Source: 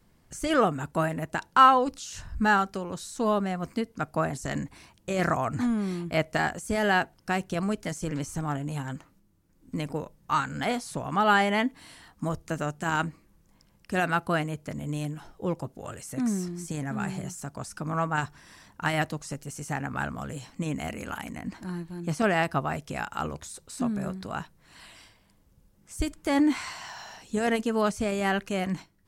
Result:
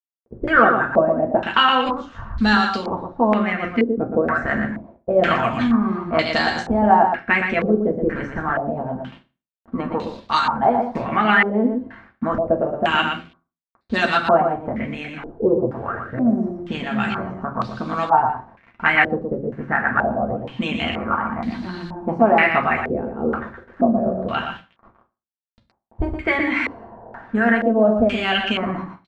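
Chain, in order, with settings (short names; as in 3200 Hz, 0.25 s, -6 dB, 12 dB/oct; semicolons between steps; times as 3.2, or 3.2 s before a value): gate -48 dBFS, range -8 dB; low-pass opened by the level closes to 420 Hz, open at -25.5 dBFS; harmonic-percussive split percussive +6 dB; in parallel at +2 dB: compressor, threshold -31 dBFS, peak gain reduction 18 dB; on the sum: echo 0.118 s -6 dB; requantised 8-bit, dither none; reverb RT60 0.30 s, pre-delay 4 ms, DRR 1 dB; stepped low-pass 2.1 Hz 460–4100 Hz; gain -3.5 dB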